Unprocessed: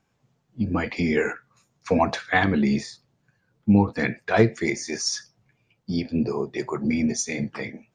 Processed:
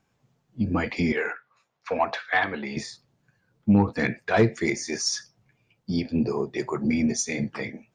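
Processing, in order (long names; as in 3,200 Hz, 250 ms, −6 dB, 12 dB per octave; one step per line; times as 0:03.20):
soft clipping −9 dBFS, distortion −20 dB
0:01.12–0:02.77: three-way crossover with the lows and the highs turned down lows −16 dB, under 470 Hz, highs −18 dB, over 4,300 Hz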